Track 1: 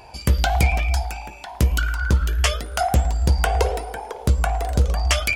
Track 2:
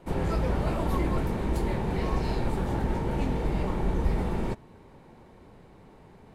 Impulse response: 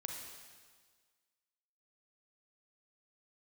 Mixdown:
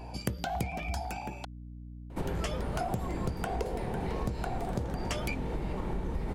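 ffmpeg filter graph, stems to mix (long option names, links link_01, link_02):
-filter_complex "[0:a]highpass=frequency=100:width=0.5412,highpass=frequency=100:width=1.3066,tiltshelf=frequency=650:gain=6,volume=-2dB,asplit=3[link_01][link_02][link_03];[link_01]atrim=end=1.45,asetpts=PTS-STARTPTS,afade=type=out:start_time=1.446:duration=0.004:curve=hsin[link_04];[link_02]atrim=start=1.45:end=2.27,asetpts=PTS-STARTPTS,volume=0[link_05];[link_03]atrim=start=2.27,asetpts=PTS-STARTPTS,afade=type=in:duration=0.004:curve=hsin[link_06];[link_04][link_05][link_06]concat=n=3:v=0:a=1[link_07];[1:a]adelay=2100,volume=1dB[link_08];[link_07][link_08]amix=inputs=2:normalize=0,aeval=exprs='val(0)+0.00708*(sin(2*PI*60*n/s)+sin(2*PI*2*60*n/s)/2+sin(2*PI*3*60*n/s)/3+sin(2*PI*4*60*n/s)/4+sin(2*PI*5*60*n/s)/5)':channel_layout=same,acompressor=threshold=-30dB:ratio=6"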